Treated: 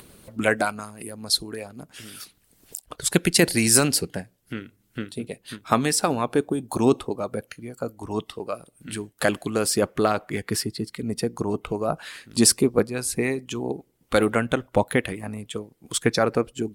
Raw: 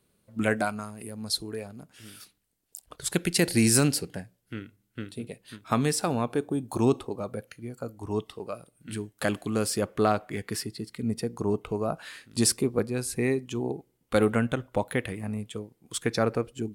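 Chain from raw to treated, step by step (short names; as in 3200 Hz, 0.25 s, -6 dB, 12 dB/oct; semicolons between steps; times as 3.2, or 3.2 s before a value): upward compressor, threshold -38 dBFS; harmonic-percussive split harmonic -9 dB; gain +7 dB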